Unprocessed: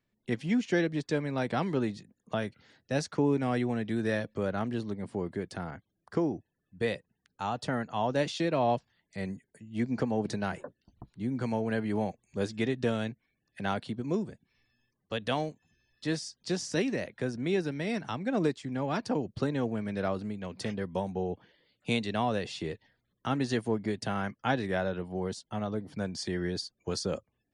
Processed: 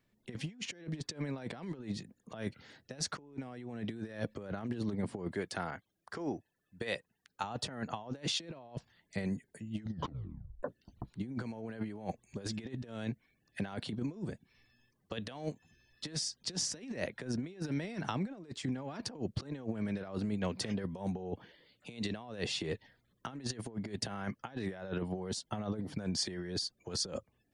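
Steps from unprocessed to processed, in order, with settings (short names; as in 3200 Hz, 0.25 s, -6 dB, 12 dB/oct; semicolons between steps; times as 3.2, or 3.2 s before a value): 5.32–7.44 low shelf 440 Hz -10.5 dB; negative-ratio compressor -36 dBFS, ratio -0.5; 9.75 tape stop 0.88 s; gain -1.5 dB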